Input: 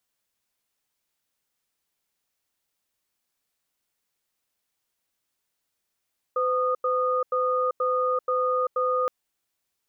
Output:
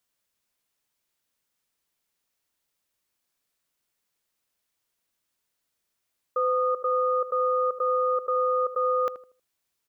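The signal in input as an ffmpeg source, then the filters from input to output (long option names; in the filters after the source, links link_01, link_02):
-f lavfi -i "aevalsrc='0.0631*(sin(2*PI*508*t)+sin(2*PI*1230*t))*clip(min(mod(t,0.48),0.39-mod(t,0.48))/0.005,0,1)':duration=2.72:sample_rate=44100"
-filter_complex "[0:a]bandreject=frequency=790:width=17,asplit=2[link_01][link_02];[link_02]adelay=79,lowpass=frequency=990:poles=1,volume=-11dB,asplit=2[link_03][link_04];[link_04]adelay=79,lowpass=frequency=990:poles=1,volume=0.33,asplit=2[link_05][link_06];[link_06]adelay=79,lowpass=frequency=990:poles=1,volume=0.33,asplit=2[link_07][link_08];[link_08]adelay=79,lowpass=frequency=990:poles=1,volume=0.33[link_09];[link_01][link_03][link_05][link_07][link_09]amix=inputs=5:normalize=0"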